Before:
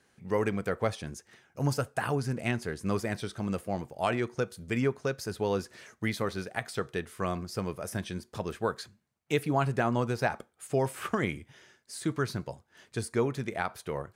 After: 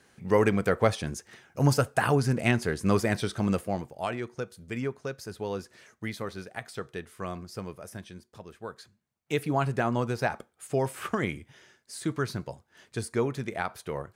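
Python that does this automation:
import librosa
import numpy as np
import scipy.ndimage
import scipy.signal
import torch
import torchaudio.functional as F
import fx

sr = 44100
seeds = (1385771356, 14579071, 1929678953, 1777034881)

y = fx.gain(x, sr, db=fx.line((3.49, 6.0), (4.13, -4.0), (7.59, -4.0), (8.5, -11.5), (9.43, 0.5)))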